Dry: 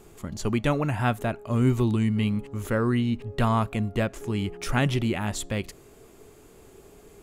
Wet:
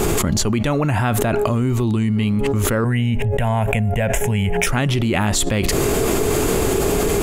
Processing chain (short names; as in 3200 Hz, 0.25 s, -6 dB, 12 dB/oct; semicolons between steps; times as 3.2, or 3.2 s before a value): 2.84–4.67 fixed phaser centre 1200 Hz, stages 6; fast leveller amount 100%